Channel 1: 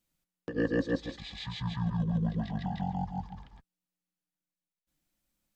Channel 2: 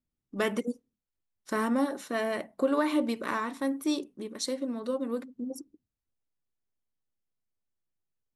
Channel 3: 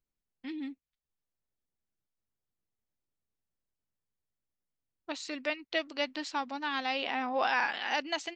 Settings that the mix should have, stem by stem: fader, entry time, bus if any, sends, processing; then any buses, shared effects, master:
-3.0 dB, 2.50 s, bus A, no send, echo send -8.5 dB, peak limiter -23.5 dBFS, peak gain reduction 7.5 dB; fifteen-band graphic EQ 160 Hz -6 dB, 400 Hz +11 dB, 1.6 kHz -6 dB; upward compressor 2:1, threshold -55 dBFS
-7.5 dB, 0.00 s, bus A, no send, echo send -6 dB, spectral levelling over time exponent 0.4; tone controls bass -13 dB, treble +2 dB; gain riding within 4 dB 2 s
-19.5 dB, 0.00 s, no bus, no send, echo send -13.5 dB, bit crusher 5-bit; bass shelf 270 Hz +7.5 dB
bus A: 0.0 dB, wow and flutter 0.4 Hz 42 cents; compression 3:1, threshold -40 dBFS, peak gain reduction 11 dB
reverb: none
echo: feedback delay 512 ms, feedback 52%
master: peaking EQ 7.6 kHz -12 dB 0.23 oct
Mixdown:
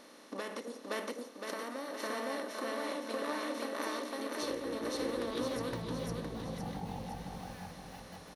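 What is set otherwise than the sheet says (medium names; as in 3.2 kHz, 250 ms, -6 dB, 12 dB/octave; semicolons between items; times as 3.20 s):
stem 1: entry 2.50 s -> 3.95 s; stem 3 -19.5 dB -> -28.5 dB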